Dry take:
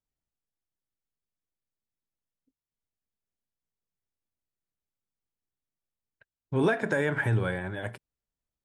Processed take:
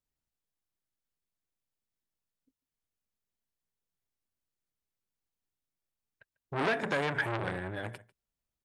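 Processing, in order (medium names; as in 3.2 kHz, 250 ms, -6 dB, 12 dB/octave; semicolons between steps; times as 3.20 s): on a send: delay 146 ms -23 dB; on the sum: transformer saturation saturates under 1.8 kHz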